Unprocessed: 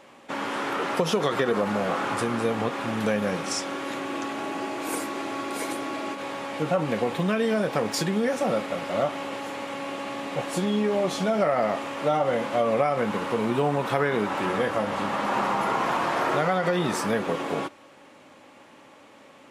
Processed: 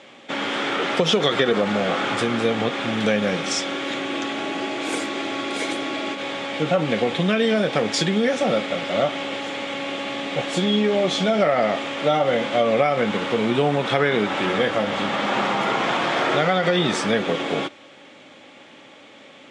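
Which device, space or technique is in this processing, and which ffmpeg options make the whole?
car door speaker: -af "highpass=97,equalizer=frequency=1000:width_type=q:width=4:gain=-7,equalizer=frequency=2200:width_type=q:width=4:gain=4,equalizer=frequency=3400:width_type=q:width=4:gain=9,lowpass=frequency=8000:width=0.5412,lowpass=frequency=8000:width=1.3066,volume=4.5dB"

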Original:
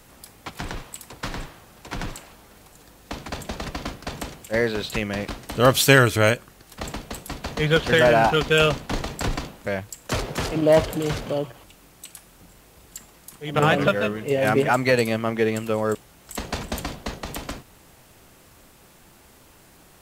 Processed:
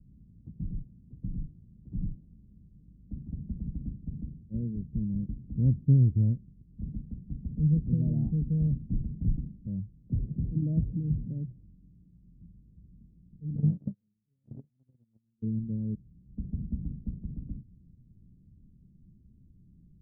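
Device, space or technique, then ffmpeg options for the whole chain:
the neighbour's flat through the wall: -filter_complex "[0:a]lowpass=frequency=200:width=0.5412,lowpass=frequency=200:width=1.3066,equalizer=frequency=190:width_type=o:width=0.69:gain=3,asplit=3[link_01][link_02][link_03];[link_01]afade=type=out:start_time=13.56:duration=0.02[link_04];[link_02]agate=range=-45dB:threshold=-23dB:ratio=16:detection=peak,afade=type=in:start_time=13.56:duration=0.02,afade=type=out:start_time=15.42:duration=0.02[link_05];[link_03]afade=type=in:start_time=15.42:duration=0.02[link_06];[link_04][link_05][link_06]amix=inputs=3:normalize=0"

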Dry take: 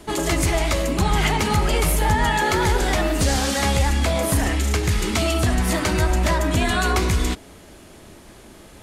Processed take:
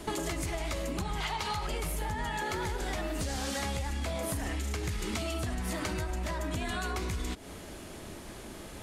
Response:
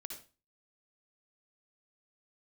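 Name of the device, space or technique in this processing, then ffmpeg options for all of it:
serial compression, peaks first: -filter_complex "[0:a]asettb=1/sr,asplit=3[link_01][link_02][link_03];[link_01]atrim=end=1.204[link_04];[link_02]atrim=start=1.2:end=1.67,asetpts=PTS-STARTPTS,afade=type=in:duration=0.004:curve=qsin,afade=type=out:start_time=0.466:duration=0.004:curve=qsin,equalizer=frequency=250:width_type=o:width=1:gain=-9,equalizer=frequency=1000:width_type=o:width=1:gain=8,equalizer=frequency=4000:width_type=o:width=1:gain=9[link_05];[link_03]atrim=start=1.666[link_06];[link_04][link_05]acrossfade=duration=0.004:curve1=hsin:curve2=qsin[link_07];[link_07][link_06]acrossfade=duration=0.004:curve1=qsin:curve2=hsin,acompressor=threshold=-27dB:ratio=6,acompressor=threshold=-32dB:ratio=2.5"

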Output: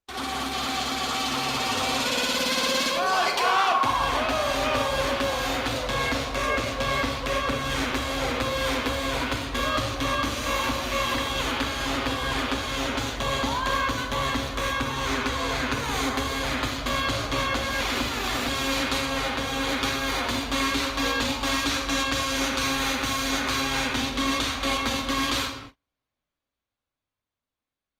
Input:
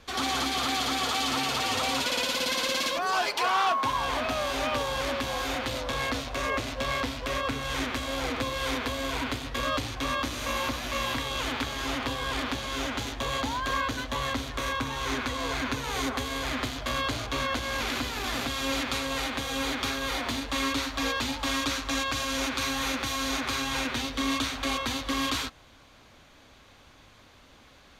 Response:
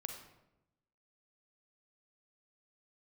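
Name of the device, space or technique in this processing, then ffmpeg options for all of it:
speakerphone in a meeting room: -filter_complex "[0:a]asettb=1/sr,asplit=3[link_01][link_02][link_03];[link_01]atrim=end=19.054[link_04];[link_02]atrim=start=19.05:end=19.69,asetpts=PTS-STARTPTS,afade=type=in:duration=0.004:curve=qsin,afade=type=out:start_time=0.636:duration=0.004:curve=qsin,highshelf=frequency=5700:gain=-5[link_05];[link_03]atrim=start=19.686[link_06];[link_04][link_05]acrossfade=duration=0.004:curve1=hsin:curve2=qsin[link_07];[link_07][link_06]acrossfade=duration=0.004:curve1=qsin:curve2=hsin[link_08];[1:a]atrim=start_sample=2205[link_09];[link_08][link_09]afir=irnorm=-1:irlink=0,dynaudnorm=framelen=180:gausssize=21:maxgain=4dB,agate=range=-35dB:threshold=-43dB:ratio=16:detection=peak,volume=2dB" -ar 48000 -c:a libopus -b:a 32k

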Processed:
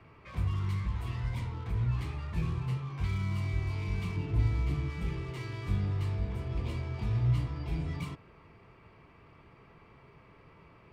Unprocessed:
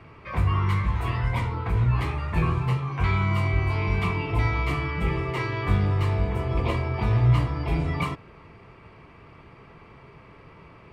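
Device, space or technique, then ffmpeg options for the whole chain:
one-band saturation: -filter_complex "[0:a]asettb=1/sr,asplit=3[link_01][link_02][link_03];[link_01]atrim=end=4.164[link_04];[link_02]atrim=start=4.16:end=4.9,asetpts=PTS-STARTPTS,afade=type=in:duration=0.004:curve=qsin,afade=type=out:start_time=0.736:duration=0.004:curve=qsin,tiltshelf=frequency=920:gain=5[link_05];[link_03]atrim=start=4.896[link_06];[link_04][link_05]acrossfade=duration=0.004:curve1=hsin:curve2=qsin[link_07];[link_07][link_06]acrossfade=duration=0.004:curve1=qsin:curve2=hsin,acrossover=split=320|3000[link_08][link_09][link_10];[link_09]asoftclip=type=tanh:threshold=-39.5dB[link_11];[link_08][link_11][link_10]amix=inputs=3:normalize=0,volume=-8dB"

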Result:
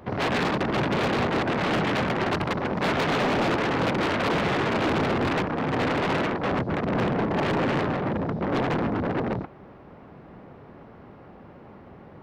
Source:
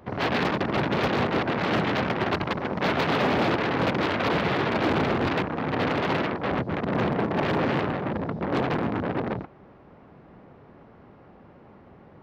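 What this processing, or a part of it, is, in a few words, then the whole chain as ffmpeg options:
saturation between pre-emphasis and de-emphasis: -af "highshelf=frequency=5200:gain=6,asoftclip=type=tanh:threshold=-23.5dB,highshelf=frequency=5200:gain=-6,volume=4dB"

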